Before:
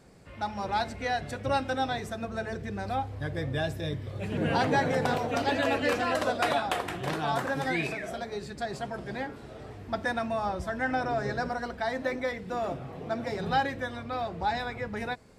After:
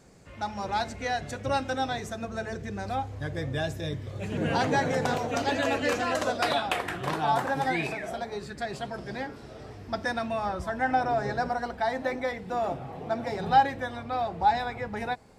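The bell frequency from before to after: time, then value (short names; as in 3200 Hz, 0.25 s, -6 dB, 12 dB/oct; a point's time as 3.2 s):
bell +7.5 dB 0.41 oct
6.31 s 6600 Hz
7.2 s 840 Hz
8.31 s 840 Hz
8.97 s 5300 Hz
10.14 s 5300 Hz
10.73 s 810 Hz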